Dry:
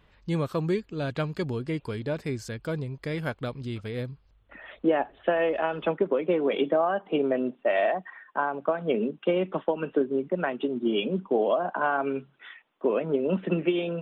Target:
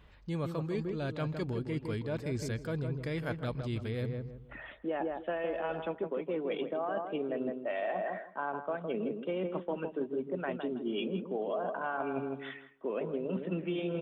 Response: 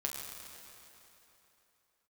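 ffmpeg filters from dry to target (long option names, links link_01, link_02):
-filter_complex "[0:a]asplit=2[link_01][link_02];[link_02]adelay=161,lowpass=frequency=1200:poles=1,volume=-6.5dB,asplit=2[link_03][link_04];[link_04]adelay=161,lowpass=frequency=1200:poles=1,volume=0.32,asplit=2[link_05][link_06];[link_06]adelay=161,lowpass=frequency=1200:poles=1,volume=0.32,asplit=2[link_07][link_08];[link_08]adelay=161,lowpass=frequency=1200:poles=1,volume=0.32[link_09];[link_01][link_03][link_05][link_07][link_09]amix=inputs=5:normalize=0,areverse,acompressor=threshold=-32dB:ratio=6,areverse,equalizer=frequency=62:width_type=o:width=1.2:gain=6.5"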